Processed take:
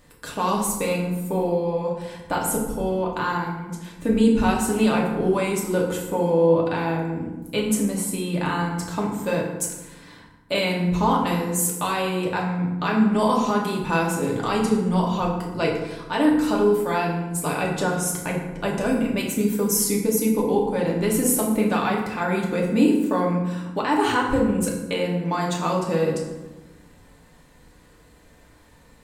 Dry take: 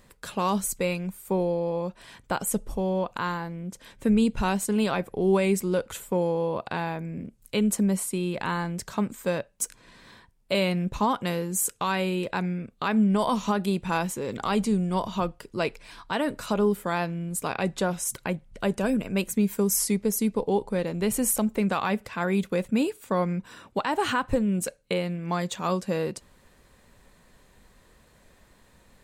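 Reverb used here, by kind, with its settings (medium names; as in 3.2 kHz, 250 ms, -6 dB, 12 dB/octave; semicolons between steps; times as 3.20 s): FDN reverb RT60 1.1 s, low-frequency decay 1.45×, high-frequency decay 0.6×, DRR -2.5 dB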